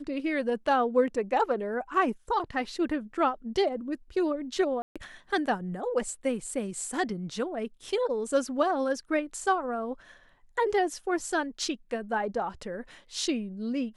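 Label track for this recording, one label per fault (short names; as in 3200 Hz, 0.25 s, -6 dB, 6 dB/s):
4.820000	4.960000	gap 0.136 s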